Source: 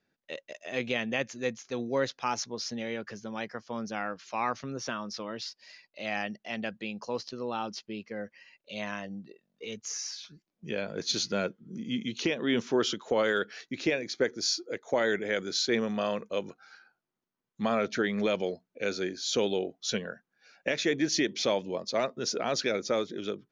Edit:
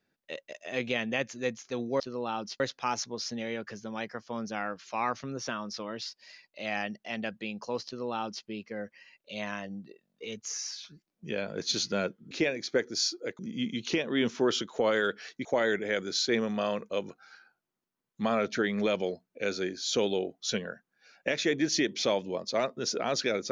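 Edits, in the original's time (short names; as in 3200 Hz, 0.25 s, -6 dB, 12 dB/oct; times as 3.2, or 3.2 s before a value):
7.26–7.86 copy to 2
13.77–14.85 move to 11.71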